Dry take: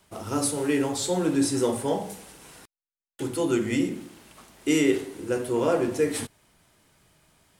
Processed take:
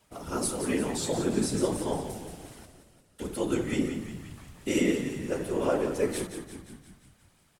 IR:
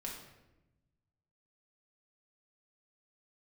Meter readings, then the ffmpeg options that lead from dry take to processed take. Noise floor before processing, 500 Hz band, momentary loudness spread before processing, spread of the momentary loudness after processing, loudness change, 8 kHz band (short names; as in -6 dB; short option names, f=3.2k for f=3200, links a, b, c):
under -85 dBFS, -4.0 dB, 10 LU, 16 LU, -4.0 dB, -3.5 dB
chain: -filter_complex "[0:a]afftfilt=real='hypot(re,im)*cos(2*PI*random(0))':imag='hypot(re,im)*sin(2*PI*random(1))':win_size=512:overlap=0.75,asplit=8[a][b][c][d][e][f][g][h];[b]adelay=175,afreqshift=-48,volume=-9dB[i];[c]adelay=350,afreqshift=-96,volume=-13.6dB[j];[d]adelay=525,afreqshift=-144,volume=-18.2dB[k];[e]adelay=700,afreqshift=-192,volume=-22.7dB[l];[f]adelay=875,afreqshift=-240,volume=-27.3dB[m];[g]adelay=1050,afreqshift=-288,volume=-31.9dB[n];[h]adelay=1225,afreqshift=-336,volume=-36.5dB[o];[a][i][j][k][l][m][n][o]amix=inputs=8:normalize=0,volume=1.5dB"